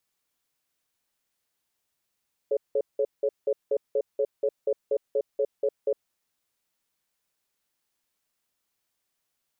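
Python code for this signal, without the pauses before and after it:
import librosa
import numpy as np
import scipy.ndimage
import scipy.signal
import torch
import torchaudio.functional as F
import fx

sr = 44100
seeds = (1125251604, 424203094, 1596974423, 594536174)

y = fx.cadence(sr, length_s=3.55, low_hz=428.0, high_hz=554.0, on_s=0.06, off_s=0.18, level_db=-24.0)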